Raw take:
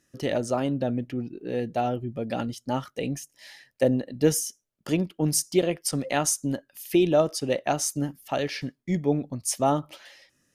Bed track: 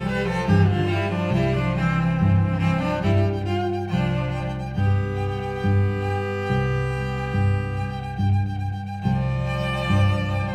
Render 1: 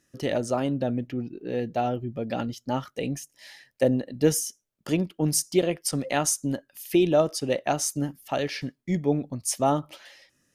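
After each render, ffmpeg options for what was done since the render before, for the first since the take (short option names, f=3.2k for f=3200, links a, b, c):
-filter_complex "[0:a]asettb=1/sr,asplit=3[a][b][c];[a]atrim=end=1.074[d];[b]atrim=start=1.07:end=2.88,asetpts=PTS-STARTPTS,afade=t=in:d=0.004:c=qsin,afade=t=out:st=1.806:d=0.004:c=qsin,equalizer=f=9.2k:t=o:w=0.36:g=-10[e];[c]atrim=start=2.876[f];[d][e]acrossfade=d=0.004:c1=hsin:c2=qsin[g];[g][f]acrossfade=d=0.004:c1=qsin:c2=hsin"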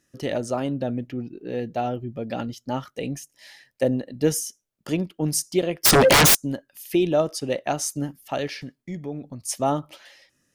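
-filter_complex "[0:a]asettb=1/sr,asplit=3[a][b][c];[a]atrim=end=5.834[d];[b]atrim=start=5.83:end=6.35,asetpts=PTS-STARTPTS,afade=t=in:d=0.004:c=qsin,afade=t=out:st=0.516:d=0.004:c=qsin,aeval=exprs='0.282*sin(PI/2*10*val(0)/0.282)':c=same[e];[c]atrim=start=6.346[f];[d][e]acrossfade=d=0.004:c1=hsin:c2=qsin[g];[g][f]acrossfade=d=0.004:c1=qsin:c2=hsin,asplit=3[h][i][j];[h]afade=t=out:st=8.53:d=0.02[k];[i]acompressor=threshold=-34dB:ratio=2:attack=3.2:release=140:knee=1:detection=peak,afade=t=in:st=8.53:d=0.02,afade=t=out:st=9.48:d=0.02[l];[j]afade=t=in:st=9.48:d=0.02[m];[k][l][m]amix=inputs=3:normalize=0"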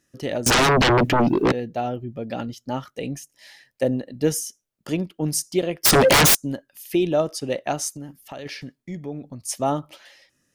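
-filter_complex "[0:a]asettb=1/sr,asplit=3[a][b][c];[a]atrim=end=0.464[d];[b]atrim=start=0.46:end=1.52,asetpts=PTS-STARTPTS,afade=t=in:d=0.004:c=qsin,afade=t=out:st=1.056:d=0.004:c=qsin,aeval=exprs='0.211*sin(PI/2*8.91*val(0)/0.211)':c=same[e];[c]atrim=start=1.516[f];[d][e]acrossfade=d=0.004:c1=hsin:c2=qsin[g];[g][f]acrossfade=d=0.004:c1=qsin:c2=hsin,asplit=3[h][i][j];[h]afade=t=out:st=7.88:d=0.02[k];[i]acompressor=threshold=-33dB:ratio=4:attack=3.2:release=140:knee=1:detection=peak,afade=t=in:st=7.88:d=0.02,afade=t=out:st=8.45:d=0.02[l];[j]afade=t=in:st=8.45:d=0.02[m];[k][l][m]amix=inputs=3:normalize=0"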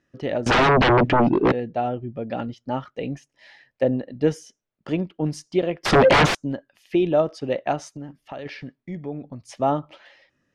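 -af "lowpass=3k,equalizer=f=740:t=o:w=1.5:g=2"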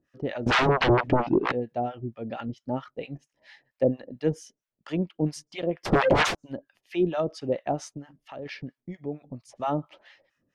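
-filter_complex "[0:a]acrossover=split=810[a][b];[a]aeval=exprs='val(0)*(1-1/2+1/2*cos(2*PI*4.4*n/s))':c=same[c];[b]aeval=exprs='val(0)*(1-1/2-1/2*cos(2*PI*4.4*n/s))':c=same[d];[c][d]amix=inputs=2:normalize=0"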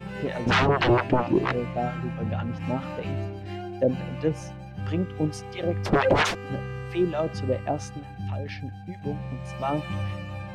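-filter_complex "[1:a]volume=-11.5dB[a];[0:a][a]amix=inputs=2:normalize=0"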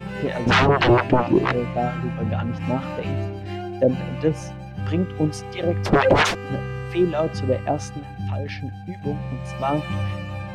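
-af "volume=4.5dB"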